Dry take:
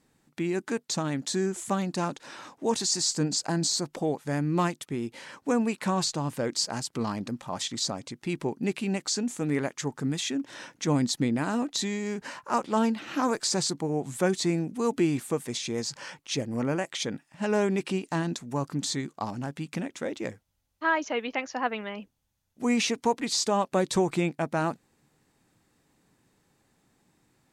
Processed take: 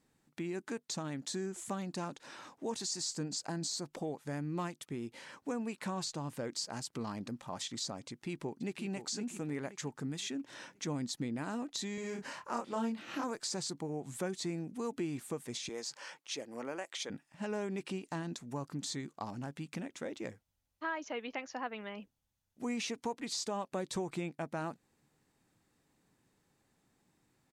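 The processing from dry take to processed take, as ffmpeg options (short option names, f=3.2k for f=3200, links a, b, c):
-filter_complex "[0:a]asplit=2[a][b];[b]afade=t=in:st=8.08:d=0.01,afade=t=out:st=8.85:d=0.01,aecho=0:1:520|1040|1560|2080:0.316228|0.11068|0.0387379|0.0135583[c];[a][c]amix=inputs=2:normalize=0,asettb=1/sr,asplit=3[d][e][f];[d]atrim=end=11.954[g];[e]atrim=start=11.95:end=13.24,asetpts=PTS-STARTPTS,afade=t=in:d=0.004:c=qsin,afade=t=out:st=1.286:d=0.004:c=qsin,asplit=2[h][i];[i]adelay=26,volume=-2dB[j];[h][j]amix=inputs=2:normalize=0,atrim=end_sample=56889[k];[f]atrim=start=13.236[l];[g][k]acrossfade=d=0.004:c1=hsin:c2=qsin[m];[m][l]acrossfade=d=0.004:c1=qsin:c2=hsin,asettb=1/sr,asplit=3[n][o][p];[n]atrim=end=15.694[q];[o]atrim=start=15.69:end=17.1,asetpts=PTS-STARTPTS,afade=t=in:d=0.004:c=qsin,afade=t=out:st=1.406:d=0.004:c=qsin,highpass=400[r];[p]atrim=start=17.096[s];[q][r]acrossfade=d=0.004:c1=hsin:c2=qsin[t];[t][s]acrossfade=d=0.004:c1=qsin:c2=hsin,acompressor=threshold=-31dB:ratio=2,volume=-6.5dB"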